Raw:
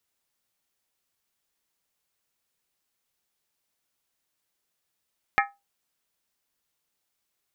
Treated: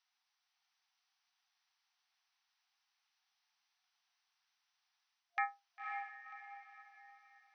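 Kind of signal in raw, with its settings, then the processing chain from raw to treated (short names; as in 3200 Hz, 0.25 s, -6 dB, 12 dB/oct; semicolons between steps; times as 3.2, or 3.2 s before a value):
skin hit, lowest mode 803 Hz, modes 6, decay 0.23 s, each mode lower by 1 dB, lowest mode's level -18 dB
reverse; compressor 12:1, threshold -33 dBFS; reverse; FFT band-pass 690–6200 Hz; diffused feedback echo 0.543 s, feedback 40%, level -4 dB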